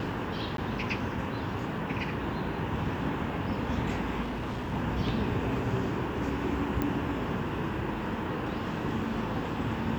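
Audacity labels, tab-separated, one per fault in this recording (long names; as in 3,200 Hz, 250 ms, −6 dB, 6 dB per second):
0.570000	0.580000	drop-out 12 ms
4.220000	4.740000	clipping −30.5 dBFS
6.820000	6.820000	click −17 dBFS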